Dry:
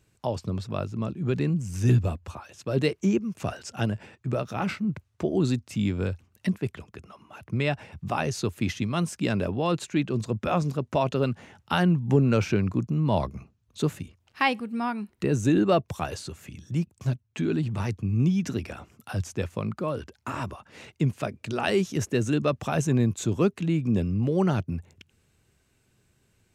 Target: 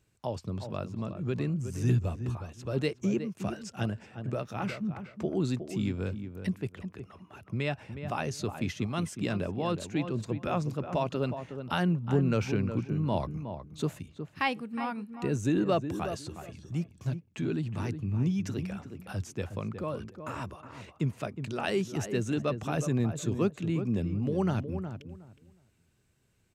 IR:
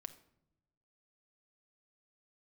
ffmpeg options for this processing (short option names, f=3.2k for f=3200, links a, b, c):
-filter_complex "[0:a]asplit=2[a][b];[b]adelay=365,lowpass=f=1.5k:p=1,volume=-8.5dB,asplit=2[c][d];[d]adelay=365,lowpass=f=1.5k:p=1,volume=0.21,asplit=2[e][f];[f]adelay=365,lowpass=f=1.5k:p=1,volume=0.21[g];[a][c][e][g]amix=inputs=4:normalize=0,volume=-5.5dB"